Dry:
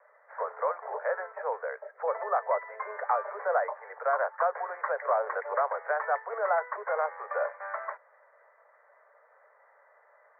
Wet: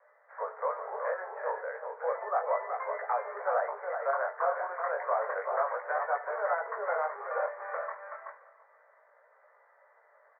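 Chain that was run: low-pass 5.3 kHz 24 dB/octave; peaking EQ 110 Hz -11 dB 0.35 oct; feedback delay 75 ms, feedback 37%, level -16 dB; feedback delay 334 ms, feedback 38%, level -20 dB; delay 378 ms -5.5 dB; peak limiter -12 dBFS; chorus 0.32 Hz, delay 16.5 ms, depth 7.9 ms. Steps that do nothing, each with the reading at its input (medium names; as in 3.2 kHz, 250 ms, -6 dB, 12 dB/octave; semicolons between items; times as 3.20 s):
low-pass 5.3 kHz: input has nothing above 2.2 kHz; peaking EQ 110 Hz: input has nothing below 380 Hz; peak limiter -12 dBFS: peak at its input -14.0 dBFS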